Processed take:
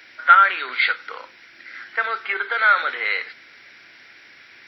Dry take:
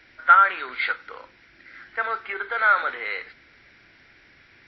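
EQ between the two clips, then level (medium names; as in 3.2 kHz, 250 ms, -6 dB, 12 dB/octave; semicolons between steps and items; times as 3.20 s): high-pass 190 Hz 6 dB/octave; dynamic bell 960 Hz, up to -6 dB, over -32 dBFS, Q 0.91; tilt EQ +2 dB/octave; +5.5 dB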